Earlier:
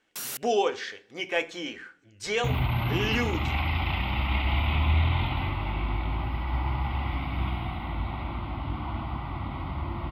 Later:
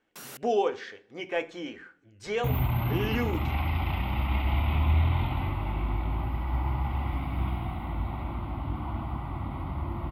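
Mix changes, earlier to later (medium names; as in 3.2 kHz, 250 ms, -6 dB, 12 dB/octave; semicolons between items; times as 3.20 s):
second sound: remove Savitzky-Golay filter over 15 samples; master: add treble shelf 2 kHz -11 dB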